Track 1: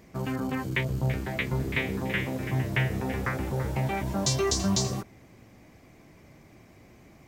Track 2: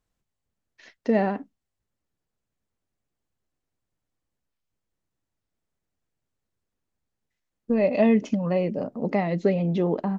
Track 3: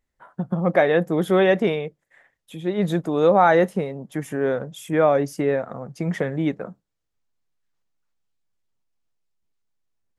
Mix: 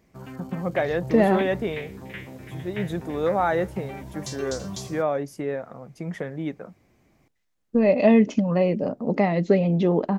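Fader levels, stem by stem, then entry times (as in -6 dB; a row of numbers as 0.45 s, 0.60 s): -9.0 dB, +3.0 dB, -7.0 dB; 0.00 s, 0.05 s, 0.00 s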